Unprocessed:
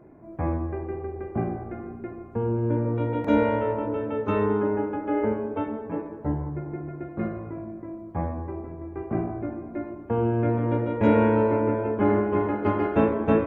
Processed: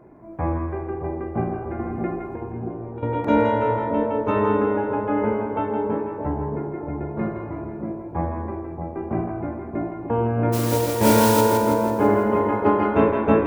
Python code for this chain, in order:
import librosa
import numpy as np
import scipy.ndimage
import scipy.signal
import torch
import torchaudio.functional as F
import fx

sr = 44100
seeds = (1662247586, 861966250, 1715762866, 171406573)

y = fx.peak_eq(x, sr, hz=950.0, db=4.0, octaves=0.49)
y = fx.hum_notches(y, sr, base_hz=50, count=7)
y = fx.over_compress(y, sr, threshold_db=-32.0, ratio=-0.5, at=(1.79, 3.03))
y = fx.mod_noise(y, sr, seeds[0], snr_db=11, at=(10.52, 11.4), fade=0.02)
y = fx.echo_split(y, sr, split_hz=910.0, low_ms=624, high_ms=165, feedback_pct=52, wet_db=-5.5)
y = F.gain(torch.from_numpy(y), 2.5).numpy()